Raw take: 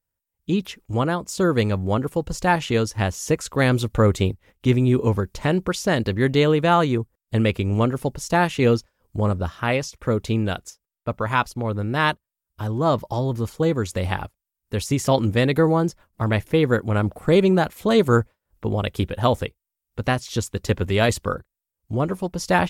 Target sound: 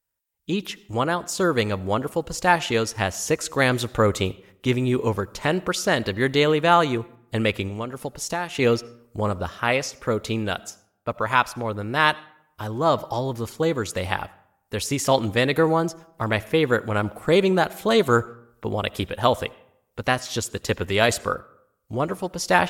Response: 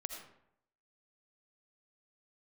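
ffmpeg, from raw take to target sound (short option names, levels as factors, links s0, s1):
-filter_complex "[0:a]asettb=1/sr,asplit=3[s0][s1][s2];[s0]atrim=end=7.674[s3];[s1]atrim=start=7.67:end=8.55,asetpts=PTS-STARTPTS,afade=t=in:d=0.004:c=qsin,afade=t=out:st=0.876:d=0.004:c=qsin,acompressor=threshold=0.0631:ratio=6[s4];[s2]atrim=start=8.546[s5];[s3][s4]acrossfade=d=0.004:c1=hsin:c2=qsin[s6];[s6][s5]acrossfade=d=0.004:c1=qsin:c2=hsin,lowshelf=f=340:g=-10,asplit=2[s7][s8];[1:a]atrim=start_sample=2205[s9];[s8][s9]afir=irnorm=-1:irlink=0,volume=0.211[s10];[s7][s10]amix=inputs=2:normalize=0,volume=1.19"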